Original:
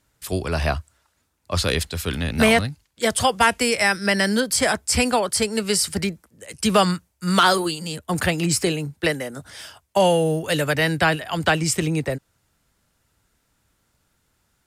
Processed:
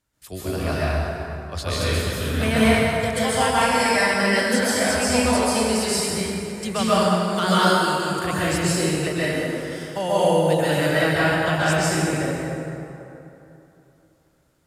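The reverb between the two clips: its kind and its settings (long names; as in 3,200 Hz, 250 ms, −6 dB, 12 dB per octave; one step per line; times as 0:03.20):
dense smooth reverb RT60 3 s, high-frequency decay 0.55×, pre-delay 115 ms, DRR −10 dB
level −10 dB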